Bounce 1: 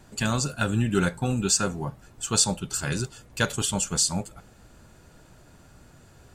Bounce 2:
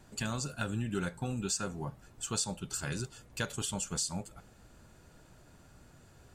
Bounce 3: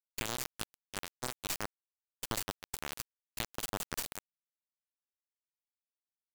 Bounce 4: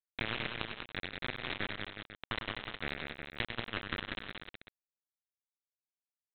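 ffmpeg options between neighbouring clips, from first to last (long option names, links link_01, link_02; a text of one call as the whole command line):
ffmpeg -i in.wav -af "acompressor=threshold=-29dB:ratio=2,volume=-5.5dB" out.wav
ffmpeg -i in.wav -filter_complex "[0:a]acrossover=split=780|3900[link_01][link_02][link_03];[link_01]acompressor=threshold=-44dB:ratio=4[link_04];[link_02]acompressor=threshold=-48dB:ratio=4[link_05];[link_03]acompressor=threshold=-43dB:ratio=4[link_06];[link_04][link_05][link_06]amix=inputs=3:normalize=0,acrusher=bits=3:dc=4:mix=0:aa=0.000001,agate=range=-33dB:threshold=-52dB:ratio=3:detection=peak,volume=7.5dB" out.wav
ffmpeg -i in.wav -af "bandpass=frequency=2000:width_type=q:width=3.1:csg=0,aresample=8000,acrusher=bits=4:dc=4:mix=0:aa=0.000001,aresample=44100,aecho=1:1:100|130|190|277|366|494:0.447|0.106|0.562|0.188|0.376|0.224,volume=13.5dB" out.wav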